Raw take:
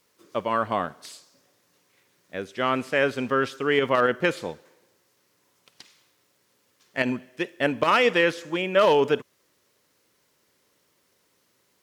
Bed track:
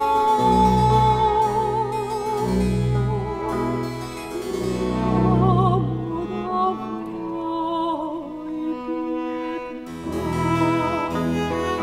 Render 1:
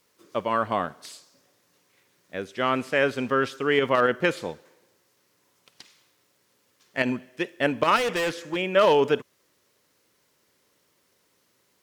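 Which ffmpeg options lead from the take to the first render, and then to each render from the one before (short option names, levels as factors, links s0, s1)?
-filter_complex "[0:a]asettb=1/sr,asplit=3[s0][s1][s2];[s0]atrim=end=7.964[s3];[s1]atrim=start=7.96:end=8.56,asetpts=PTS-STARTPTS,afade=t=in:d=0.004:c=qsin,afade=t=out:st=0.596:d=0.004:c=qsin,volume=14.1,asoftclip=hard,volume=0.0708[s4];[s2]atrim=start=8.556[s5];[s3][s4]acrossfade=d=0.004:c1=hsin:c2=qsin[s6];[s6][s5]acrossfade=d=0.004:c1=qsin:c2=hsin"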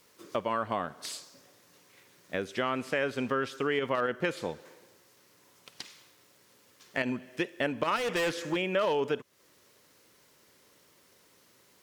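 -filter_complex "[0:a]asplit=2[s0][s1];[s1]alimiter=limit=0.126:level=0:latency=1:release=488,volume=0.794[s2];[s0][s2]amix=inputs=2:normalize=0,acompressor=threshold=0.0282:ratio=2.5"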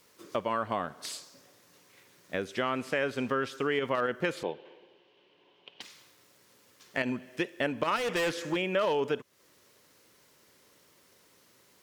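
-filter_complex "[0:a]asettb=1/sr,asplit=3[s0][s1][s2];[s0]atrim=end=4.434[s3];[s1]atrim=start=4.43:end=5.81,asetpts=PTS-STARTPTS,afade=t=in:d=0.004:c=qsin,afade=t=out:st=1.376:d=0.004:c=qsin,highpass=200,equalizer=f=240:t=q:w=4:g=-5,equalizer=f=380:t=q:w=4:g=6,equalizer=f=820:t=q:w=4:g=3,equalizer=f=1300:t=q:w=4:g=-10,equalizer=f=1900:t=q:w=4:g=-6,equalizer=f=3000:t=q:w=4:g=10,lowpass=f=3300:w=0.5412,lowpass=f=3300:w=1.3066[s4];[s2]atrim=start=5.806[s5];[s3][s4]acrossfade=d=0.004:c1=hsin:c2=qsin[s6];[s6][s5]acrossfade=d=0.004:c1=qsin:c2=hsin"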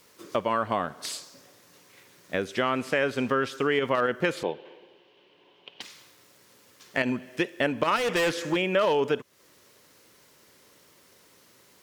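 -af "volume=1.68"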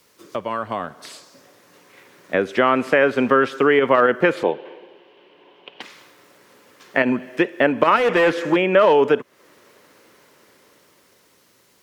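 -filter_complex "[0:a]acrossover=split=190|2600[s0][s1][s2];[s1]dynaudnorm=f=250:g=13:m=3.76[s3];[s2]alimiter=level_in=2.66:limit=0.0631:level=0:latency=1:release=194,volume=0.376[s4];[s0][s3][s4]amix=inputs=3:normalize=0"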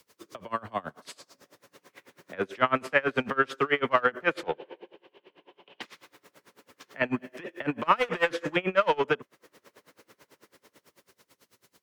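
-filter_complex "[0:a]acrossover=split=190|740[s0][s1][s2];[s1]asoftclip=type=tanh:threshold=0.0596[s3];[s0][s3][s2]amix=inputs=3:normalize=0,aeval=exprs='val(0)*pow(10,-27*(0.5-0.5*cos(2*PI*9.1*n/s))/20)':c=same"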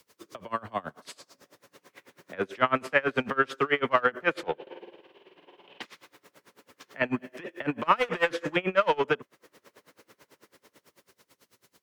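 -filter_complex "[0:a]asettb=1/sr,asplit=3[s0][s1][s2];[s0]atrim=end=4.624[s3];[s1]atrim=start=4.62:end=5.82,asetpts=PTS-STARTPTS,afade=t=in:d=0.004:c=qsin,afade=t=out:st=1.196:d=0.004:c=qsin,asplit=2[s4][s5];[s5]adelay=48,volume=0.708[s6];[s4][s6]amix=inputs=2:normalize=0,atrim=end_sample=52920[s7];[s2]atrim=start=5.816[s8];[s3][s7]acrossfade=d=0.004:c1=hsin:c2=qsin[s9];[s9][s8]acrossfade=d=0.004:c1=qsin:c2=hsin"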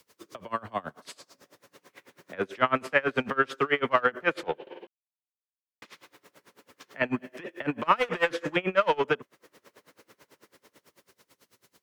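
-filter_complex "[0:a]asplit=3[s0][s1][s2];[s0]atrim=end=4.87,asetpts=PTS-STARTPTS,afade=t=out:st=4.866:d=0.004:c=hsin[s3];[s1]atrim=start=4.87:end=5.82,asetpts=PTS-STARTPTS,volume=0[s4];[s2]atrim=start=5.82,asetpts=PTS-STARTPTS,afade=t=in:d=0.004:c=hsin[s5];[s3][s4][s5]concat=n=3:v=0:a=1"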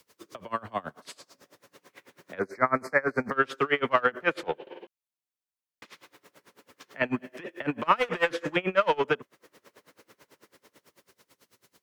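-filter_complex "[0:a]asettb=1/sr,asplit=3[s0][s1][s2];[s0]atrim=end=2.394[s3];[s1]atrim=start=2.39:end=3.32,asetpts=PTS-STARTPTS,afade=t=in:d=0.004:c=qsin,afade=t=out:st=0.926:d=0.004:c=qsin,asuperstop=centerf=3100:order=12:qfactor=1.6[s4];[s2]atrim=start=3.316[s5];[s3][s4]acrossfade=d=0.004:c1=hsin:c2=qsin[s6];[s6][s5]acrossfade=d=0.004:c1=qsin:c2=hsin"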